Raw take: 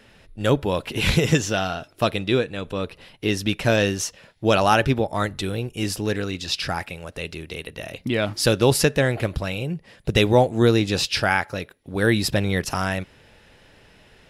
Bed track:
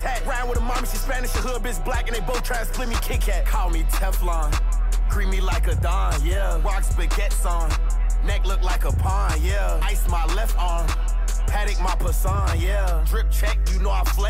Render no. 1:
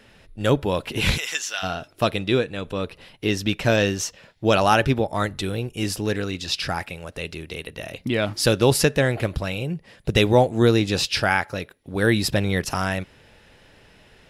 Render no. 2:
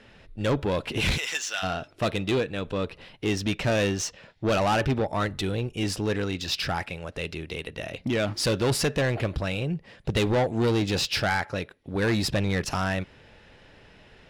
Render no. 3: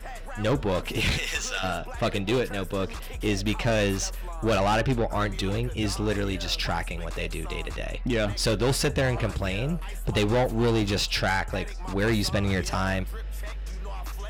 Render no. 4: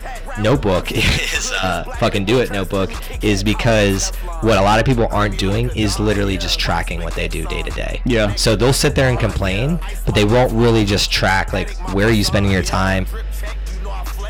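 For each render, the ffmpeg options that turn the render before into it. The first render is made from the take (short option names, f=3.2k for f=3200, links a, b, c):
-filter_complex "[0:a]asplit=3[a][b][c];[a]afade=t=out:st=1.16:d=0.02[d];[b]highpass=1.4k,afade=t=in:st=1.16:d=0.02,afade=t=out:st=1.62:d=0.02[e];[c]afade=t=in:st=1.62:d=0.02[f];[d][e][f]amix=inputs=3:normalize=0,asettb=1/sr,asplit=3[g][h][i];[g]atrim=end=3.284[j];[h]atrim=start=3.28:end=4.53,asetpts=PTS-STARTPTS,afade=t=in:d=0.004:c=qsin,afade=t=out:st=1.246:d=0.004:c=qsin,equalizer=f=10k:t=o:w=0.21:g=-8[k];[i]atrim=start=4.526[l];[j][k]acrossfade=d=0.004:c1=hsin:c2=qsin[m];[m][l]acrossfade=d=0.004:c1=qsin:c2=hsin"
-af "asoftclip=type=tanh:threshold=-19dB,adynamicsmooth=sensitivity=5.5:basefreq=6.6k"
-filter_complex "[1:a]volume=-14dB[a];[0:a][a]amix=inputs=2:normalize=0"
-af "volume=10dB"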